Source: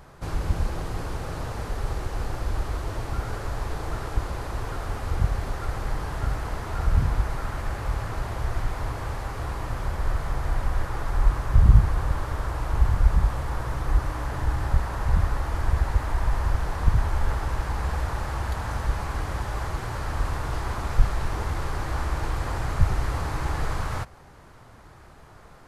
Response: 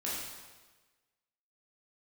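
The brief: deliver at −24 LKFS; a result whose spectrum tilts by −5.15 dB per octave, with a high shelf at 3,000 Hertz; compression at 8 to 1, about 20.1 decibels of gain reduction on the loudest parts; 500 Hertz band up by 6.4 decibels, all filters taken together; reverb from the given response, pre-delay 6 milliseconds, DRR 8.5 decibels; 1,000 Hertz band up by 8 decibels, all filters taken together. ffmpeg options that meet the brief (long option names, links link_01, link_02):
-filter_complex "[0:a]equalizer=frequency=500:width_type=o:gain=5.5,equalizer=frequency=1000:width_type=o:gain=7.5,highshelf=frequency=3000:gain=6,acompressor=threshold=-32dB:ratio=8,asplit=2[link_01][link_02];[1:a]atrim=start_sample=2205,adelay=6[link_03];[link_02][link_03]afir=irnorm=-1:irlink=0,volume=-12.5dB[link_04];[link_01][link_04]amix=inputs=2:normalize=0,volume=13dB"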